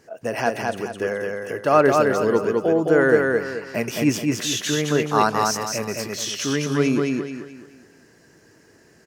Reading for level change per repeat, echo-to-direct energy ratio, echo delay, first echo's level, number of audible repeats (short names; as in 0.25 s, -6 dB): -9.0 dB, -2.5 dB, 0.214 s, -3.0 dB, 4